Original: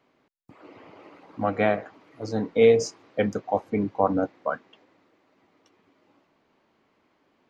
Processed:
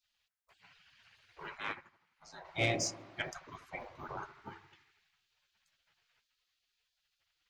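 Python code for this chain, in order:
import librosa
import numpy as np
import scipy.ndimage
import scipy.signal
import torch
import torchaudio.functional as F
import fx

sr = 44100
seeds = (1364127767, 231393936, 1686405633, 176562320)

p1 = x + fx.echo_wet_lowpass(x, sr, ms=83, feedback_pct=60, hz=1000.0, wet_db=-13.0, dry=0)
p2 = fx.spec_gate(p1, sr, threshold_db=-20, keep='weak')
p3 = 10.0 ** (-21.0 / 20.0) * np.tanh(p2 / 10.0 ** (-21.0 / 20.0))
y = fx.upward_expand(p3, sr, threshold_db=-58.0, expansion=1.5, at=(1.56, 2.44), fade=0.02)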